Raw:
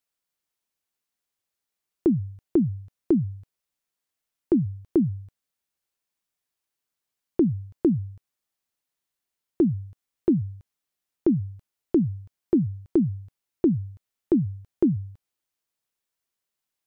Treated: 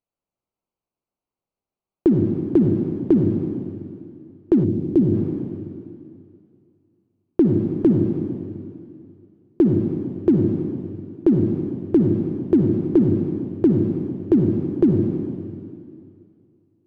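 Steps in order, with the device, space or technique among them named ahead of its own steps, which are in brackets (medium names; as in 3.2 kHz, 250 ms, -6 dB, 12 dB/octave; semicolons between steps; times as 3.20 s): local Wiener filter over 25 samples; stairwell (reverberation RT60 2.4 s, pre-delay 50 ms, DRR 1 dB); 4.63–5.13 s: peaking EQ 1.3 kHz -14 dB -> -6 dB 2 oct; trim +4.5 dB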